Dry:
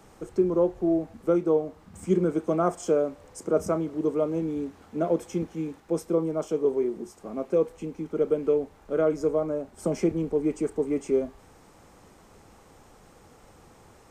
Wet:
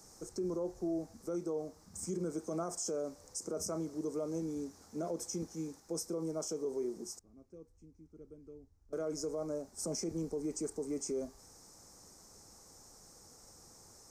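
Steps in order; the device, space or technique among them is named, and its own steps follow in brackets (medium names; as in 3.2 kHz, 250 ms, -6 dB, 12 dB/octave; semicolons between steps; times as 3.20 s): 7.19–8.93 s: FFT filter 100 Hz 0 dB, 190 Hz -17 dB, 290 Hz -14 dB, 570 Hz -26 dB, 2.3 kHz -22 dB, 5.9 kHz -27 dB; over-bright horn tweeter (resonant high shelf 4.1 kHz +11 dB, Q 3; peak limiter -20 dBFS, peak gain reduction 8.5 dB); trim -9 dB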